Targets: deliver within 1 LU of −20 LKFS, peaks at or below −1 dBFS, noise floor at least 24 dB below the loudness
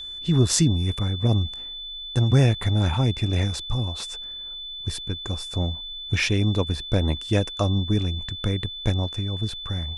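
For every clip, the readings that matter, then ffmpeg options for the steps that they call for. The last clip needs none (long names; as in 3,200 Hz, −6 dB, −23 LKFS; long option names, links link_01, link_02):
interfering tone 3,500 Hz; level of the tone −33 dBFS; integrated loudness −24.5 LKFS; sample peak −4.5 dBFS; target loudness −20.0 LKFS
→ -af "bandreject=frequency=3500:width=30"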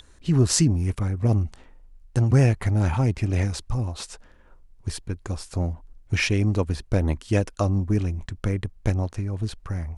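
interfering tone none found; integrated loudness −24.5 LKFS; sample peak −4.5 dBFS; target loudness −20.0 LKFS
→ -af "volume=4.5dB,alimiter=limit=-1dB:level=0:latency=1"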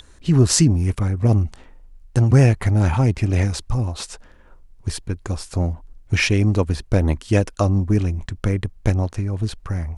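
integrated loudness −20.0 LKFS; sample peak −1.0 dBFS; background noise floor −48 dBFS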